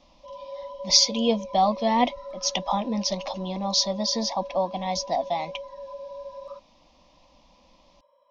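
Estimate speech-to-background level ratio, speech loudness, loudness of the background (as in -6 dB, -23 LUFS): 15.0 dB, -24.5 LUFS, -39.5 LUFS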